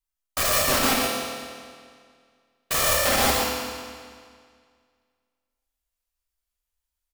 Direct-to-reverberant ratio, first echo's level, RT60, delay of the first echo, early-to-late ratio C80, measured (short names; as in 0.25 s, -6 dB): -4.5 dB, -6.0 dB, 2.0 s, 0.117 s, -1.0 dB